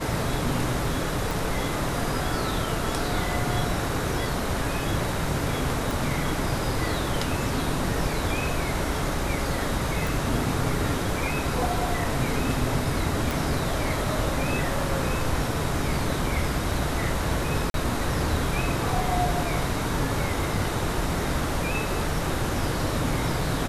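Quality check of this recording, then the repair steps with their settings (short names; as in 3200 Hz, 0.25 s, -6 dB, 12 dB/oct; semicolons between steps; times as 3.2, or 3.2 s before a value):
1.31 pop
5.91 pop
10.07 pop
13.31 pop
17.7–17.74 gap 42 ms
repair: de-click; interpolate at 17.7, 42 ms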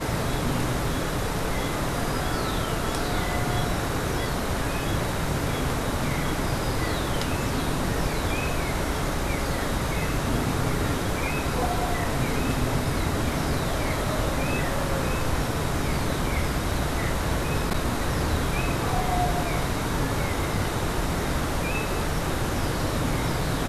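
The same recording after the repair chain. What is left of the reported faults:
1.31 pop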